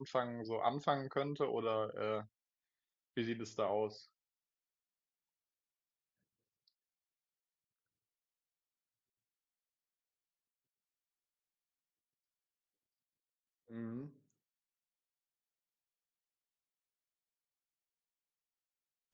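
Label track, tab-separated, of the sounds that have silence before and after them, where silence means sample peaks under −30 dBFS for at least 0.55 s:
3.170000	3.850000	sound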